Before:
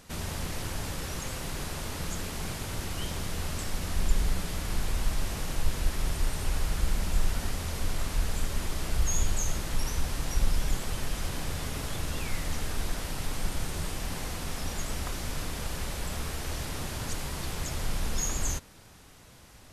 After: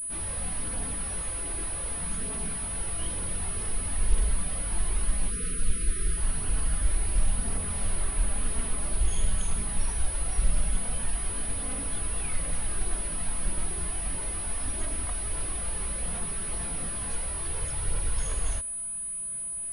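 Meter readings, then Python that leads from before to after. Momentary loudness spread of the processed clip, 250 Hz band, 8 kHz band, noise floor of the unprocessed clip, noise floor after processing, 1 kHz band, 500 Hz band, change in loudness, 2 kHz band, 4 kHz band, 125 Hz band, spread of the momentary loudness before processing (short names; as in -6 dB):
2 LU, -2.5 dB, +8.5 dB, -52 dBFS, -35 dBFS, -2.5 dB, -2.5 dB, +3.5 dB, -3.0 dB, -5.0 dB, -1.5 dB, 5 LU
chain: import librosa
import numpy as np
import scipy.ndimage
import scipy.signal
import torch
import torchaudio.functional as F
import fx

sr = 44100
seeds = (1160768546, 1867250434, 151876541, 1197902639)

y = fx.chorus_voices(x, sr, voices=4, hz=0.16, base_ms=21, depth_ms=3.0, mix_pct=65)
y = fx.spec_erase(y, sr, start_s=5.3, length_s=0.87, low_hz=530.0, high_hz=1200.0)
y = fx.pwm(y, sr, carrier_hz=9900.0)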